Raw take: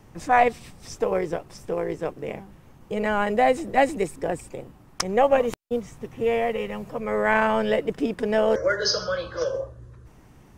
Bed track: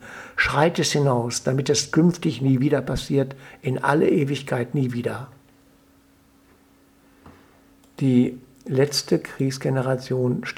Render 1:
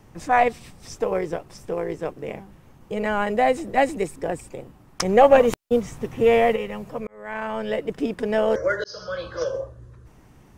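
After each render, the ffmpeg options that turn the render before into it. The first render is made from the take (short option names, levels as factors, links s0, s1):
-filter_complex "[0:a]asettb=1/sr,asplit=3[s0][s1][s2];[s0]atrim=end=5.014[s3];[s1]atrim=start=5.01:end=6.56,asetpts=PTS-STARTPTS,afade=t=in:d=0.004:c=qsin,afade=t=out:st=1.546:d=0.004:c=qsin,acontrast=63[s4];[s2]atrim=start=6.556[s5];[s3][s4]acrossfade=d=0.004:c1=hsin:c2=qsin[s6];[s6][s5]acrossfade=d=0.004:c1=qsin:c2=hsin,asplit=3[s7][s8][s9];[s7]atrim=end=7.07,asetpts=PTS-STARTPTS,afade=t=out:st=7.066:d=0.004:c=hsin[s10];[s8]atrim=start=7.07:end=8.84,asetpts=PTS-STARTPTS,afade=t=in:d=0.96,afade=t=out:st=1.766:d=0.004:c=hsin[s11];[s9]atrim=start=8.84,asetpts=PTS-STARTPTS,afade=t=in:d=0.42[s12];[s10][s11][s12]concat=n=3:v=0:a=1"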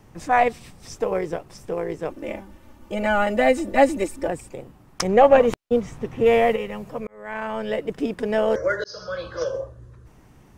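-filter_complex "[0:a]asettb=1/sr,asplit=3[s0][s1][s2];[s0]atrim=end=2.104[s3];[s1]atrim=start=2.1:end=4.28,asetpts=PTS-STARTPTS,afade=t=in:d=0.004:c=qsin,afade=t=out:st=2.176:d=0.004:c=qsin,aecho=1:1:3.4:0.98,atrim=end_sample=96138[s4];[s2]atrim=start=4.276[s5];[s3][s4]acrossfade=d=0.004:c1=hsin:c2=qsin[s6];[s6][s5]acrossfade=d=0.004:c1=qsin:c2=hsin,asettb=1/sr,asplit=3[s7][s8][s9];[s7]atrim=end=5.074[s10];[s8]atrim=start=5.07:end=6.26,asetpts=PTS-STARTPTS,afade=t=in:d=0.004:c=qsin,afade=t=out:st=1.186:d=0.004:c=qsin,highshelf=f=6700:g=-10.5[s11];[s9]atrim=start=6.256[s12];[s10][s11]acrossfade=d=0.004:c1=hsin:c2=qsin[s13];[s13][s12]acrossfade=d=0.004:c1=qsin:c2=hsin,asettb=1/sr,asplit=3[s14][s15][s16];[s14]atrim=end=8.704[s17];[s15]atrim=start=8.7:end=9.25,asetpts=PTS-STARTPTS,afade=t=in:d=0.004:c=qsin,afade=t=out:st=0.546:d=0.004:c=qsin,bandreject=f=3100:w=12[s18];[s16]atrim=start=9.246[s19];[s17][s18]acrossfade=d=0.004:c1=hsin:c2=qsin[s20];[s20][s19]acrossfade=d=0.004:c1=qsin:c2=hsin"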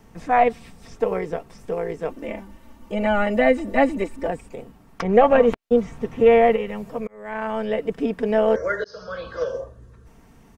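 -filter_complex "[0:a]acrossover=split=3400[s0][s1];[s1]acompressor=threshold=0.002:ratio=4:attack=1:release=60[s2];[s0][s2]amix=inputs=2:normalize=0,aecho=1:1:4.4:0.44"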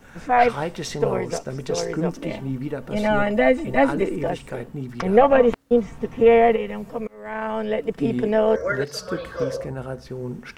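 -filter_complex "[1:a]volume=0.355[s0];[0:a][s0]amix=inputs=2:normalize=0"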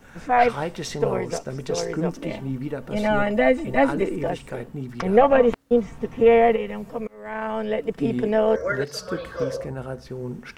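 -af "volume=0.891"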